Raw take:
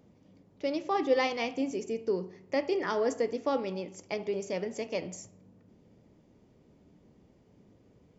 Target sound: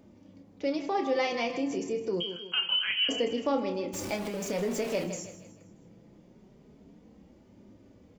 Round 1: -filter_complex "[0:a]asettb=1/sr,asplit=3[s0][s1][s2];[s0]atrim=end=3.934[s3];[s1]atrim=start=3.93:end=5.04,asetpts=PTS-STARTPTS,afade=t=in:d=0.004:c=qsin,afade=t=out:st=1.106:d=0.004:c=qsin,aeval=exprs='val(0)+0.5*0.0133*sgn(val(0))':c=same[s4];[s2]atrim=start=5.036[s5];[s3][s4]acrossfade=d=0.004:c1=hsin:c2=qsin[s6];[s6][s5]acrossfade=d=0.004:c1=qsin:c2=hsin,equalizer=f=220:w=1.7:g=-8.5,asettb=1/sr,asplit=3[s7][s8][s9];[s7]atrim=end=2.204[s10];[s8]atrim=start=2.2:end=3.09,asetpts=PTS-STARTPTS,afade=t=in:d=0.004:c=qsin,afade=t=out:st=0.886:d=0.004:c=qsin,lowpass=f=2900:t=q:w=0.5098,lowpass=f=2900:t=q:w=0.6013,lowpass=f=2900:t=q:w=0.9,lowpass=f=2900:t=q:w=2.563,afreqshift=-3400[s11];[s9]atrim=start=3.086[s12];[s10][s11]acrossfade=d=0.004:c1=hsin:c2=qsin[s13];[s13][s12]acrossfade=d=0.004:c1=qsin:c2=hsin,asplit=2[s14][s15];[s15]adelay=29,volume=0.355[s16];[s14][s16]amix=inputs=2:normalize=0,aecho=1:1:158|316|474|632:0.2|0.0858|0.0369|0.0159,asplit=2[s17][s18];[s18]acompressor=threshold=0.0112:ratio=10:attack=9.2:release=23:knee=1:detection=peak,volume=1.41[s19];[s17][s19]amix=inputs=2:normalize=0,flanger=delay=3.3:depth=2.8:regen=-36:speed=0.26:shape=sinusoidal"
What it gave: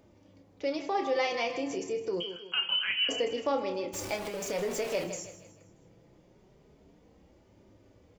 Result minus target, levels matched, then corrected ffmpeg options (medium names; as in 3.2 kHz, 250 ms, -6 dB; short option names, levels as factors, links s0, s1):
250 Hz band -4.0 dB
-filter_complex "[0:a]asettb=1/sr,asplit=3[s0][s1][s2];[s0]atrim=end=3.934[s3];[s1]atrim=start=3.93:end=5.04,asetpts=PTS-STARTPTS,afade=t=in:d=0.004:c=qsin,afade=t=out:st=1.106:d=0.004:c=qsin,aeval=exprs='val(0)+0.5*0.0133*sgn(val(0))':c=same[s4];[s2]atrim=start=5.036[s5];[s3][s4]acrossfade=d=0.004:c1=hsin:c2=qsin[s6];[s6][s5]acrossfade=d=0.004:c1=qsin:c2=hsin,equalizer=f=220:w=1.7:g=2,asettb=1/sr,asplit=3[s7][s8][s9];[s7]atrim=end=2.204[s10];[s8]atrim=start=2.2:end=3.09,asetpts=PTS-STARTPTS,afade=t=in:d=0.004:c=qsin,afade=t=out:st=0.886:d=0.004:c=qsin,lowpass=f=2900:t=q:w=0.5098,lowpass=f=2900:t=q:w=0.6013,lowpass=f=2900:t=q:w=0.9,lowpass=f=2900:t=q:w=2.563,afreqshift=-3400[s11];[s9]atrim=start=3.086[s12];[s10][s11]acrossfade=d=0.004:c1=hsin:c2=qsin[s13];[s13][s12]acrossfade=d=0.004:c1=qsin:c2=hsin,asplit=2[s14][s15];[s15]adelay=29,volume=0.355[s16];[s14][s16]amix=inputs=2:normalize=0,aecho=1:1:158|316|474|632:0.2|0.0858|0.0369|0.0159,asplit=2[s17][s18];[s18]acompressor=threshold=0.0112:ratio=10:attack=9.2:release=23:knee=1:detection=peak,volume=1.41[s19];[s17][s19]amix=inputs=2:normalize=0,flanger=delay=3.3:depth=2.8:regen=-36:speed=0.26:shape=sinusoidal"